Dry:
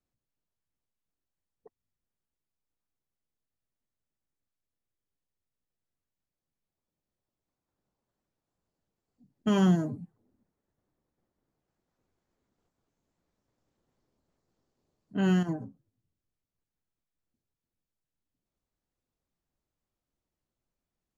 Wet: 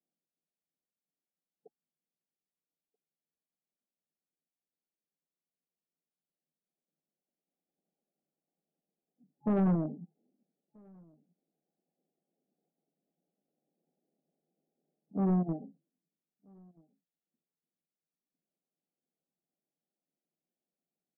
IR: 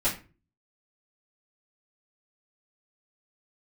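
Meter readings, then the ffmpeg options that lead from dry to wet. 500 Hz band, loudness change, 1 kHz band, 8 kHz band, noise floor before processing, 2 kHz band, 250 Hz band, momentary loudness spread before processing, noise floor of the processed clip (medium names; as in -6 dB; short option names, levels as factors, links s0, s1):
-3.0 dB, -3.5 dB, -3.5 dB, no reading, under -85 dBFS, -15.0 dB, -3.5 dB, 14 LU, under -85 dBFS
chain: -filter_complex "[0:a]aeval=exprs='0.2*(cos(1*acos(clip(val(0)/0.2,-1,1)))-cos(1*PI/2))+0.0355*(cos(3*acos(clip(val(0)/0.2,-1,1)))-cos(3*PI/2))+0.00447*(cos(8*acos(clip(val(0)/0.2,-1,1)))-cos(8*PI/2))':c=same,asplit=2[s0][s1];[s1]acrusher=bits=4:mix=0:aa=0.000001,volume=0.422[s2];[s0][s2]amix=inputs=2:normalize=0,afftfilt=real='re*between(b*sr/4096,140,850)':imag='im*between(b*sr/4096,140,850)':win_size=4096:overlap=0.75,asoftclip=type=tanh:threshold=0.0473,asplit=2[s3][s4];[s4]adelay=1283,volume=0.0355,highshelf=f=4000:g=-28.9[s5];[s3][s5]amix=inputs=2:normalize=0,volume=1.41"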